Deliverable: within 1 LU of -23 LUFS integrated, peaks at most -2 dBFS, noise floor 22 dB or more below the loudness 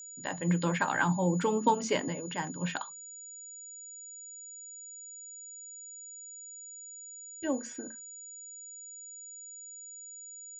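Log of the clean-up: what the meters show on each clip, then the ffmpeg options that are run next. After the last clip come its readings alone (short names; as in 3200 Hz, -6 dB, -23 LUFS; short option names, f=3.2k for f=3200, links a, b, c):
steady tone 6900 Hz; tone level -44 dBFS; loudness -35.5 LUFS; peak -12.5 dBFS; loudness target -23.0 LUFS
-> -af "bandreject=f=6.9k:w=30"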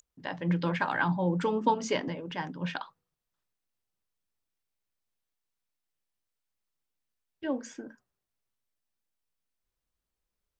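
steady tone none; loudness -31.0 LUFS; peak -12.5 dBFS; loudness target -23.0 LUFS
-> -af "volume=8dB"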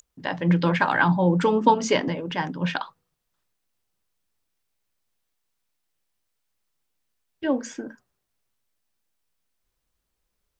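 loudness -23.0 LUFS; peak -4.5 dBFS; noise floor -79 dBFS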